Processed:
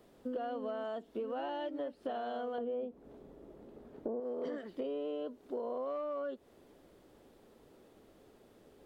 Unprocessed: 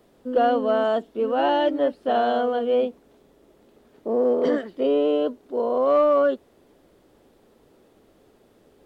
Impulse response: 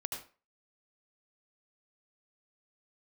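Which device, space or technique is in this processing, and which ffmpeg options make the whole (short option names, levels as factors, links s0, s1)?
serial compression, leveller first: -filter_complex "[0:a]asettb=1/sr,asplit=3[s0][s1][s2];[s0]atrim=end=2.584[s3];[s1]atrim=start=2.58:end=4.2,asetpts=PTS-STARTPTS,afade=t=in:d=0.004:c=qsin,afade=t=out:st=1.616:d=0.004:c=qsin,tiltshelf=f=1500:g=7.5[s4];[s2]atrim=start=4.196[s5];[s3][s4]acrossfade=d=0.004:c1=hsin:c2=qsin[s6];[s6][s5]acrossfade=d=0.004:c1=qsin:c2=hsin,acompressor=threshold=0.0631:ratio=2,acompressor=threshold=0.0251:ratio=6,volume=0.631"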